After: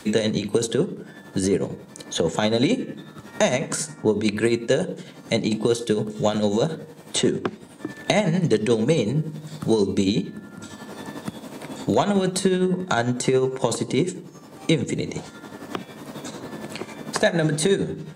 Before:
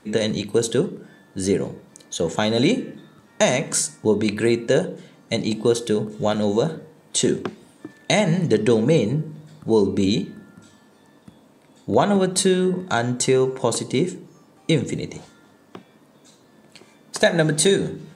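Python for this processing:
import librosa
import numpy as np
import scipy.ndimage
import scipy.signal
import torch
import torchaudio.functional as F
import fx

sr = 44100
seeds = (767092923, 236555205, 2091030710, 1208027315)

p1 = 10.0 ** (-12.5 / 20.0) * np.tanh(x / 10.0 ** (-12.5 / 20.0))
p2 = x + (p1 * librosa.db_to_amplitude(-9.0))
p3 = p2 * (1.0 - 0.55 / 2.0 + 0.55 / 2.0 * np.cos(2.0 * np.pi * 11.0 * (np.arange(len(p2)) / sr)))
p4 = fx.band_squash(p3, sr, depth_pct=70)
y = p4 * librosa.db_to_amplitude(-1.0)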